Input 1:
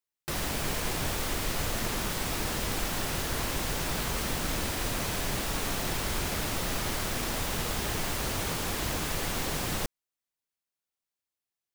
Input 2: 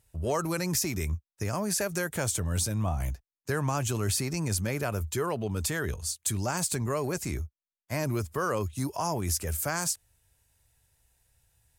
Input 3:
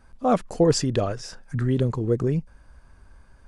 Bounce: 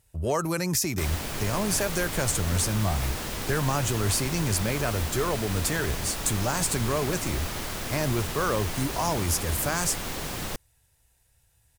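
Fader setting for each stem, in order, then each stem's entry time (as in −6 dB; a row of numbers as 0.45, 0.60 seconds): −1.5 dB, +2.5 dB, muted; 0.70 s, 0.00 s, muted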